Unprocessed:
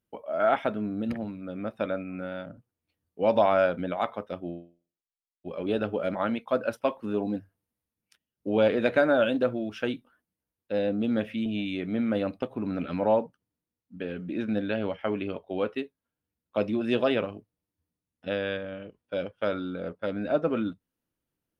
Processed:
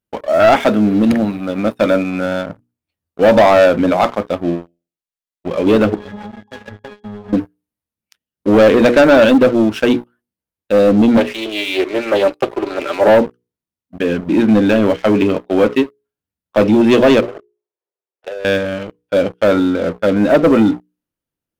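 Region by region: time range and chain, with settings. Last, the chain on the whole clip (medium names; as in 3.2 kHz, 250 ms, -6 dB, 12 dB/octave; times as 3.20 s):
0.60–2.26 s: high-pass 80 Hz 6 dB/octave + treble shelf 4.3 kHz +10 dB
5.94–7.33 s: square wave that keeps the level + pitch-class resonator G#, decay 0.31 s + compression 20:1, threshold -40 dBFS
11.17–13.08 s: Chebyshev high-pass 310 Hz, order 5 + comb 5.1 ms, depth 57% + loudspeaker Doppler distortion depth 0.23 ms
17.20–18.45 s: steep high-pass 360 Hz 96 dB/octave + tilt EQ -4.5 dB/octave + compression 12:1, threshold -38 dBFS
whole clip: hum notches 60/120/180/240/300/360/420/480 Hz; dynamic bell 300 Hz, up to +5 dB, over -36 dBFS, Q 1.1; waveshaping leveller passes 3; trim +5.5 dB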